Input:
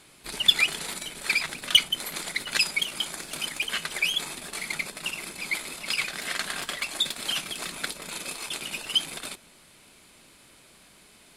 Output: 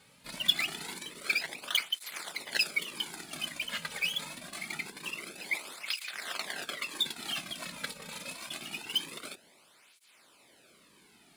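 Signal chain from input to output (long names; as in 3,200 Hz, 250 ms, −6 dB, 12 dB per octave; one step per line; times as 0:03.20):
in parallel at −9 dB: sample-rate reduction 16,000 Hz, jitter 20%
on the sum: through-zero flanger with one copy inverted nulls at 0.25 Hz, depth 3 ms
level −5 dB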